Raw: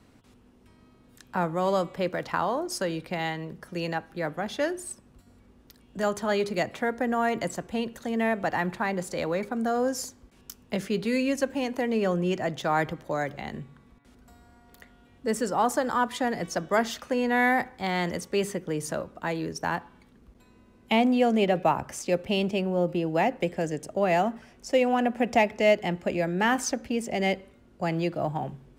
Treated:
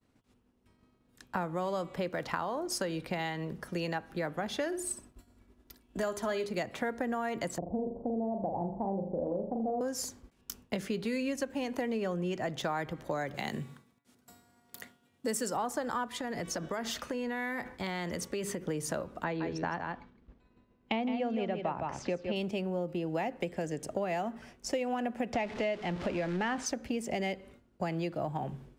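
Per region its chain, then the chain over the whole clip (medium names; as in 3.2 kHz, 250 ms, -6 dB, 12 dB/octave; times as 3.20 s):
4.66–6.46 s: peaking EQ 12 kHz +2.5 dB 0.81 oct + comb 3 ms, depth 43% + flutter echo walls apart 10.5 m, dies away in 0.26 s
7.58–9.81 s: steep low-pass 850 Hz 48 dB/octave + flutter echo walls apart 7 m, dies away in 0.47 s
13.34–15.57 s: high-pass 96 Hz 24 dB/octave + treble shelf 4.2 kHz +11.5 dB
16.20–18.63 s: band-stop 770 Hz, Q 11 + compression, threshold -32 dBFS
19.24–22.36 s: distance through air 160 m + delay 162 ms -7 dB
25.33–26.66 s: jump at every zero crossing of -31.5 dBFS + low-pass 4.6 kHz
whole clip: expander -47 dBFS; compression 6:1, threshold -32 dBFS; trim +1.5 dB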